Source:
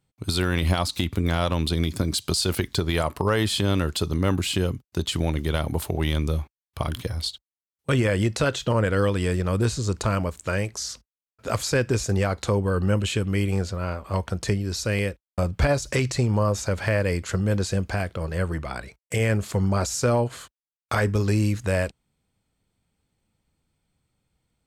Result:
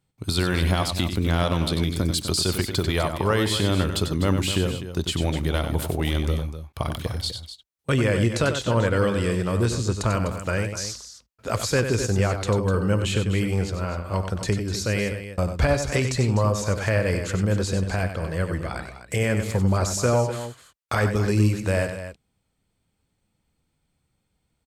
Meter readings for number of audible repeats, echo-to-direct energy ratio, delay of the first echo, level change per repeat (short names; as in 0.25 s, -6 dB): 2, -6.5 dB, 94 ms, no steady repeat